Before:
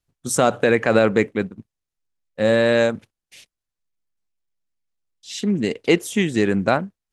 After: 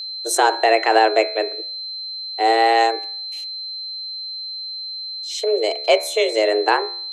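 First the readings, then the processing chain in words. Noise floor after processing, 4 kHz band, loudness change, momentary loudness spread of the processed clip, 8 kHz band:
-31 dBFS, +11.0 dB, 0.0 dB, 12 LU, +1.5 dB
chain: frequency shift +220 Hz; whistle 4.1 kHz -29 dBFS; de-hum 71.98 Hz, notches 35; trim +1.5 dB

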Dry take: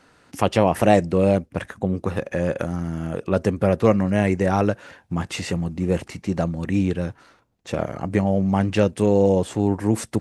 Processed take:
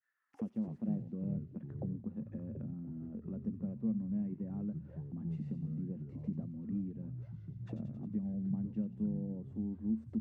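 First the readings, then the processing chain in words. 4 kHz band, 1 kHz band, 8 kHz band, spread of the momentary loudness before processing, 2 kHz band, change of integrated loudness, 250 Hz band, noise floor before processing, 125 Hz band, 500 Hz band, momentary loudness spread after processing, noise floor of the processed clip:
under -40 dB, under -35 dB, under -40 dB, 10 LU, under -40 dB, -18.0 dB, -14.0 dB, -57 dBFS, -16.0 dB, -31.5 dB, 8 LU, -56 dBFS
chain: expander -43 dBFS; compression 2.5:1, threshold -26 dBFS, peak gain reduction 11 dB; auto-wah 220–1800 Hz, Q 10, down, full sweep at -28.5 dBFS; feedback echo behind a high-pass 90 ms, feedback 62%, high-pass 3.5 kHz, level -4 dB; ever faster or slower copies 122 ms, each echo -5 st, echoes 3, each echo -6 dB

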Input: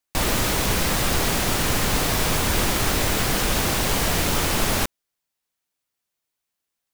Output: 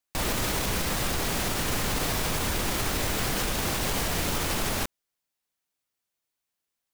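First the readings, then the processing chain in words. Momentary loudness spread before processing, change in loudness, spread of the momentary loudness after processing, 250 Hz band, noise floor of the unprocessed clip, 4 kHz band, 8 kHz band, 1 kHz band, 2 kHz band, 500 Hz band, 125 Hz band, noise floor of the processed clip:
1 LU, -6.0 dB, 1 LU, -6.0 dB, -83 dBFS, -6.0 dB, -6.0 dB, -6.0 dB, -6.0 dB, -6.0 dB, -6.5 dB, -85 dBFS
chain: peak limiter -15.5 dBFS, peak gain reduction 6.5 dB; trim -2.5 dB

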